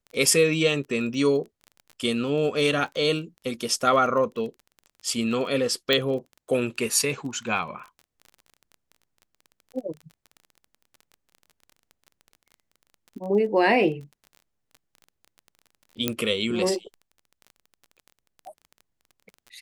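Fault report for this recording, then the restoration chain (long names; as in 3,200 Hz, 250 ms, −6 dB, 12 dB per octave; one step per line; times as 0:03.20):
surface crackle 23 per second −35 dBFS
0:05.93: click −9 dBFS
0:16.08: click −7 dBFS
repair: click removal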